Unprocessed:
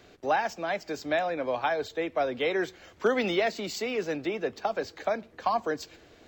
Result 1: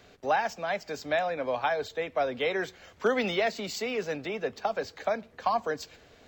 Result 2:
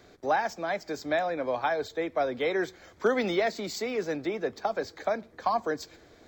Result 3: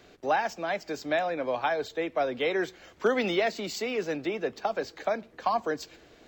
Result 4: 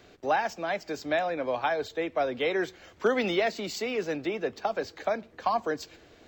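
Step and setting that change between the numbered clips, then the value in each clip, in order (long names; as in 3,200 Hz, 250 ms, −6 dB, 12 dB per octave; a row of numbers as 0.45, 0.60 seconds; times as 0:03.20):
parametric band, centre frequency: 330, 2,800, 92, 11,000 Hertz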